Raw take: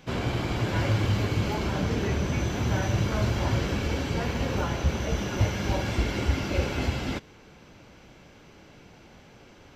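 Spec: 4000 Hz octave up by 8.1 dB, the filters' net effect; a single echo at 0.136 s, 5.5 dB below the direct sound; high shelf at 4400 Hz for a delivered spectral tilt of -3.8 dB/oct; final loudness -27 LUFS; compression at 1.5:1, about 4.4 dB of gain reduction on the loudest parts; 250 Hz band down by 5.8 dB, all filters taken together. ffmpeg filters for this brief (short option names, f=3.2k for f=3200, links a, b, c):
-af "equalizer=f=250:t=o:g=-8.5,equalizer=f=4k:t=o:g=7.5,highshelf=f=4.4k:g=6,acompressor=threshold=-32dB:ratio=1.5,aecho=1:1:136:0.531,volume=2.5dB"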